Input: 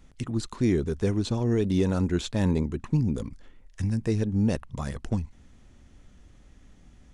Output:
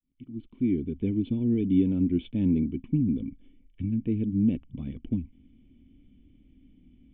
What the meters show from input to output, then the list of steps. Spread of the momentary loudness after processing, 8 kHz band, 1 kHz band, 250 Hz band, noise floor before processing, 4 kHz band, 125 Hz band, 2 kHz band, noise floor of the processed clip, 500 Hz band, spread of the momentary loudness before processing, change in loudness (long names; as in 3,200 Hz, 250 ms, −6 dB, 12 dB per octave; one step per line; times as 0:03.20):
14 LU, below −35 dB, below −20 dB, +2.0 dB, −55 dBFS, below −10 dB, −4.0 dB, below −10 dB, −60 dBFS, −7.5 dB, 8 LU, −0.5 dB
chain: fade in at the beginning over 1.04 s
formant resonators in series i
level +7 dB